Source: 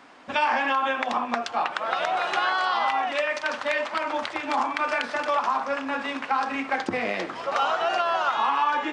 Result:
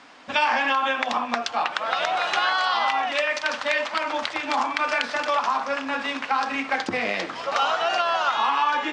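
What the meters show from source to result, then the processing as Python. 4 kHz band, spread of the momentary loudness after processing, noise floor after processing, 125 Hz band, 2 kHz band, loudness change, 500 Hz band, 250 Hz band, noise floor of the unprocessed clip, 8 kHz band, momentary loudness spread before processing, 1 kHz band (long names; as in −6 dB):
+5.5 dB, 5 LU, −36 dBFS, can't be measured, +2.5 dB, +2.0 dB, +0.5 dB, 0.0 dB, −38 dBFS, +5.5 dB, 5 LU, +1.0 dB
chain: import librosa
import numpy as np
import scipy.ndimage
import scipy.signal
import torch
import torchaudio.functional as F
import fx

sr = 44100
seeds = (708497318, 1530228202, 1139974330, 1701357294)

y = scipy.signal.sosfilt(scipy.signal.butter(2, 6300.0, 'lowpass', fs=sr, output='sos'), x)
y = fx.high_shelf(y, sr, hz=3100.0, db=10.5)
y = fx.notch(y, sr, hz=370.0, q=12.0)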